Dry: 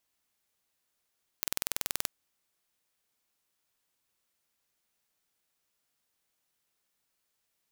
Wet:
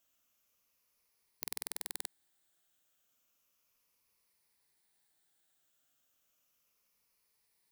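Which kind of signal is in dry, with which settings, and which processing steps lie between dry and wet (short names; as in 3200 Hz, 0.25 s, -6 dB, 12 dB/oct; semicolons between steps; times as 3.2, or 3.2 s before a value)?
pulse train 20.9/s, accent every 0, -3 dBFS 0.65 s
moving spectral ripple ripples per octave 0.86, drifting -0.33 Hz, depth 7 dB; high shelf 10000 Hz +4 dB; limiter -10.5 dBFS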